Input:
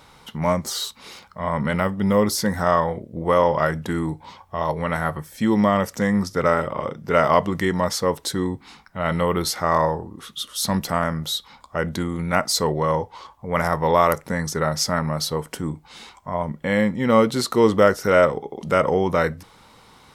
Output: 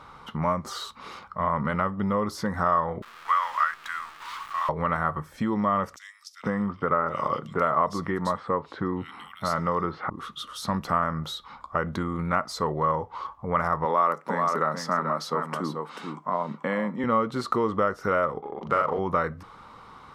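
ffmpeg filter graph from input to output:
-filter_complex "[0:a]asettb=1/sr,asplit=3[s0][s1][s2];[s0]atrim=end=3.024[s3];[s1]atrim=start=3.02:end=4.69,asetpts=PTS-STARTPTS,afade=t=in:d=0.004:c=qsin,afade=t=out:st=1.666:d=0.004:c=qsin,aeval=exprs='val(0)+0.5*0.0316*sgn(val(0))':c=same,highpass=f=1300:w=0.5412,highpass=f=1300:w=1.3066,acrusher=bits=8:dc=4:mix=0:aa=0.000001[s4];[s2]atrim=start=4.686[s5];[s3][s4]acrossfade=d=0.004:c1=hsin:c2=qsin[s6];[s6][s5]acrossfade=d=0.004:c1=qsin:c2=hsin,asettb=1/sr,asplit=3[s7][s8][s9];[s7]atrim=end=5.964[s10];[s8]atrim=start=5.96:end=10.1,asetpts=PTS-STARTPTS,afade=t=in:d=0.004:c=qsin,afade=t=out:st=4.136:d=0.004:c=qsin,highpass=88,acrossover=split=2800[s11][s12];[s11]adelay=470[s13];[s13][s12]amix=inputs=2:normalize=0,atrim=end_sample=182574[s14];[s9]atrim=start=10.096[s15];[s10][s14]acrossfade=d=0.004:c1=hsin:c2=qsin[s16];[s16][s15]acrossfade=d=0.004:c1=qsin:c2=hsin,asettb=1/sr,asplit=3[s17][s18][s19];[s17]atrim=end=13.854[s20];[s18]atrim=start=13.85:end=17.04,asetpts=PTS-STARTPTS,afade=t=in:d=0.004:c=qsin,afade=t=out:st=3.186:d=0.004:c=qsin,deesser=0.35,highpass=f=180:w=0.5412,highpass=f=180:w=1.3066,aecho=1:1:436:0.398,atrim=end_sample=140679[s21];[s19]atrim=start=17.036[s22];[s20][s21]acrossfade=d=0.004:c1=hsin:c2=qsin[s23];[s23][s22]acrossfade=d=0.004:c1=qsin:c2=hsin,asettb=1/sr,asplit=3[s24][s25][s26];[s24]atrim=end=18.414[s27];[s25]atrim=start=18.41:end=18.99,asetpts=PTS-STARTPTS,afade=t=in:d=0.004:c=qsin,afade=t=out:st=0.576:d=0.004:c=qsin,lowshelf=f=350:g=-8,adynamicsmooth=sensitivity=6.5:basefreq=2000,asplit=2[s28][s29];[s29]adelay=41,volume=0.708[s30];[s28][s30]amix=inputs=2:normalize=0,atrim=end_sample=25578[s31];[s26]atrim=start=18.986[s32];[s27][s31]acrossfade=d=0.004:c1=hsin:c2=qsin[s33];[s33][s32]acrossfade=d=0.004:c1=qsin:c2=hsin,acompressor=threshold=0.0501:ratio=3,lowpass=f=2000:p=1,equalizer=f=1200:t=o:w=0.51:g=11.5"

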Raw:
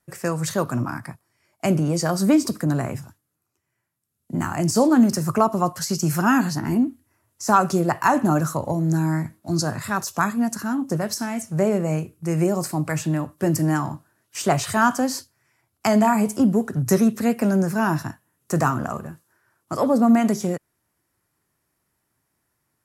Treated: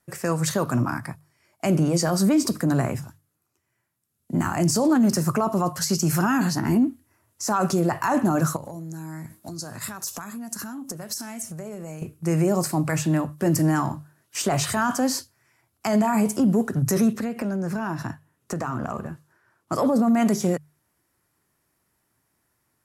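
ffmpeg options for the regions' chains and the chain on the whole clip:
-filter_complex "[0:a]asettb=1/sr,asplit=3[s0][s1][s2];[s0]atrim=end=8.564[s3];[s1]atrim=start=8.56:end=12.02,asetpts=PTS-STARTPTS,afade=t=in:d=0.004:c=qsin,afade=t=out:st=3.456:d=0.004:c=qsin,acompressor=threshold=0.02:ratio=12:attack=3.2:release=140:knee=1:detection=peak,highshelf=f=4700:g=10[s4];[s2]atrim=start=12.016[s5];[s3][s4]acrossfade=d=0.004:c1=hsin:c2=qsin[s6];[s6][s5]acrossfade=d=0.004:c1=qsin:c2=hsin,asettb=1/sr,asplit=3[s7][s8][s9];[s7]atrim=end=17.134[s10];[s8]atrim=start=17.13:end=19.72,asetpts=PTS-STARTPTS,afade=t=in:d=0.004:c=qsin,afade=t=out:st=2.586:d=0.004:c=qsin,highshelf=f=7000:g=-10.5,acompressor=threshold=0.0562:ratio=12:attack=3.2:release=140:knee=1:detection=peak[s11];[s9]atrim=start=19.716[s12];[s10][s11]acrossfade=d=0.004:c1=hsin:c2=qsin[s13];[s13][s12]acrossfade=d=0.004:c1=qsin:c2=hsin,alimiter=limit=0.178:level=0:latency=1:release=11,bandreject=f=50:t=h:w=6,bandreject=f=100:t=h:w=6,bandreject=f=150:t=h:w=6,volume=1.26"

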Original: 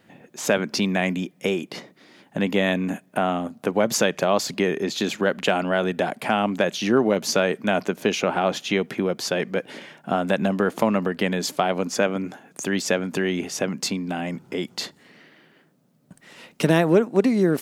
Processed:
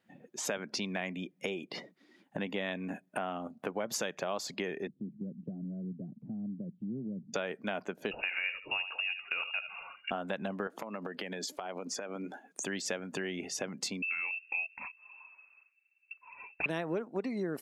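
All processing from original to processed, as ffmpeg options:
-filter_complex "[0:a]asettb=1/sr,asplit=3[s0][s1][s2];[s0]atrim=end=4.874[s3];[s1]atrim=start=4.87:end=7.34,asetpts=PTS-STARTPTS,afade=t=in:d=0.004:c=qsin,afade=t=out:st=2.466:d=0.004:c=qsin,asuperpass=centerf=150:order=4:qfactor=1.3,acompressor=mode=upward:threshold=0.0112:ratio=2.5:attack=3.2:release=140:knee=2.83:detection=peak[s4];[s2]atrim=start=7.336[s5];[s3][s4]acrossfade=d=0.004:c1=hsin:c2=qsin[s6];[s6][s5]acrossfade=d=0.004:c1=qsin:c2=hsin,asettb=1/sr,asplit=3[s7][s8][s9];[s7]atrim=end=8.114[s10];[s8]atrim=start=8.11:end=10.11,asetpts=PTS-STARTPTS,afade=t=in:d=0.004:c=qsin,afade=t=out:st=1.996:d=0.004:c=qsin,lowpass=f=2600:t=q:w=0.5098,lowpass=f=2600:t=q:w=0.6013,lowpass=f=2600:t=q:w=0.9,lowpass=f=2600:t=q:w=2.563,afreqshift=-3000,aecho=1:1:77|154|231:0.282|0.062|0.0136,atrim=end_sample=88200[s11];[s9]atrim=start=10.106[s12];[s10][s11]acrossfade=d=0.004:c1=hsin:c2=qsin[s13];[s13][s12]acrossfade=d=0.004:c1=qsin:c2=hsin,asettb=1/sr,asplit=3[s14][s15][s16];[s14]atrim=end=10.674[s17];[s15]atrim=start=10.67:end=12.64,asetpts=PTS-STARTPTS,afade=t=in:d=0.004:c=qsin,afade=t=out:st=1.966:d=0.004:c=qsin,highpass=200,acompressor=threshold=0.0447:ratio=8:attack=3.2:release=140:knee=1:detection=peak[s18];[s16]atrim=start=12.636[s19];[s17][s18]acrossfade=d=0.004:c1=hsin:c2=qsin[s20];[s20][s19]acrossfade=d=0.004:c1=qsin:c2=hsin,asettb=1/sr,asplit=3[s21][s22][s23];[s21]atrim=end=14.024[s24];[s22]atrim=start=14.02:end=16.66,asetpts=PTS-STARTPTS,afade=t=in:d=0.004:c=qsin,afade=t=out:st=2.636:d=0.004:c=qsin,highpass=f=260:t=q:w=2.1,lowpass=f=2500:t=q:w=0.5098,lowpass=f=2500:t=q:w=0.6013,lowpass=f=2500:t=q:w=0.9,lowpass=f=2500:t=q:w=2.563,afreqshift=-2900[s25];[s23]atrim=start=16.656[s26];[s24][s25]acrossfade=d=0.004:c1=hsin:c2=qsin[s27];[s27][s26]acrossfade=d=0.004:c1=qsin:c2=hsin,afftdn=nr=16:nf=-41,lowshelf=f=400:g=-6.5,acompressor=threshold=0.0126:ratio=2.5"

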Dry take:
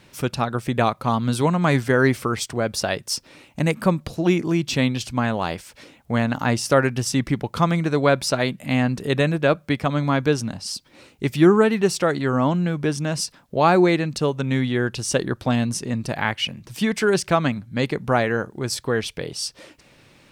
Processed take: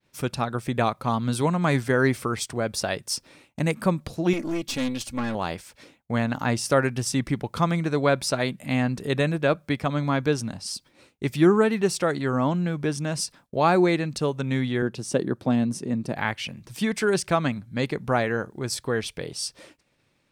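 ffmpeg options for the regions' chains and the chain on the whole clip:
-filter_complex "[0:a]asettb=1/sr,asplit=3[s0][s1][s2];[s0]atrim=end=4.334[s3];[s1]atrim=start=4.33:end=5.35,asetpts=PTS-STARTPTS,afade=t=in:d=0.004:c=qsin,afade=t=out:st=1.016:d=0.004:c=qsin,highshelf=f=9900:g=6,aecho=1:1:3.6:0.58,atrim=end_sample=44982,aeval=exprs='(tanh(8.91*val(0)+0.5)-tanh(0.5))/8.91':c=same[s4];[s2]atrim=start=5.346[s5];[s3][s4]acrossfade=d=0.004:c1=hsin:c2=qsin[s6];[s6][s5]acrossfade=d=0.004:c1=qsin:c2=hsin,asettb=1/sr,asplit=3[s7][s8][s9];[s7]atrim=end=14.824[s10];[s8]atrim=start=14.82:end=16.17,asetpts=PTS-STARTPTS,afade=t=in:d=0.004:c=qsin,afade=t=out:st=1.346:d=0.004:c=qsin,highpass=180,tiltshelf=f=640:g=6.5[s11];[s9]atrim=start=16.166[s12];[s10][s11]acrossfade=d=0.004:c1=hsin:c2=qsin[s13];[s13][s12]acrossfade=d=0.004:c1=qsin:c2=hsin,agate=range=0.0224:threshold=0.00708:ratio=3:detection=peak,bandreject=f=2900:w=29,adynamicequalizer=threshold=0.00501:dfrequency=9000:dqfactor=3.2:tfrequency=9000:tqfactor=3.2:attack=5:release=100:ratio=0.375:range=2:mode=boostabove:tftype=bell,volume=0.668"

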